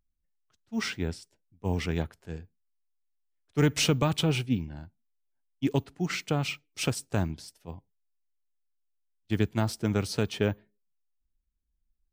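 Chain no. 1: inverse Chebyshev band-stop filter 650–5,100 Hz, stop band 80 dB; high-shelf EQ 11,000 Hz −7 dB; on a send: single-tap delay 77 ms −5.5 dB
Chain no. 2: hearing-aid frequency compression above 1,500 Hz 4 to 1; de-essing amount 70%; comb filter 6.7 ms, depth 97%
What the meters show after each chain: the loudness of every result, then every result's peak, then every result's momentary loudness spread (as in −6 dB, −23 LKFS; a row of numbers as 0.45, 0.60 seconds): −37.5, −25.5 LKFS; −23.0, −5.5 dBFS; 16, 20 LU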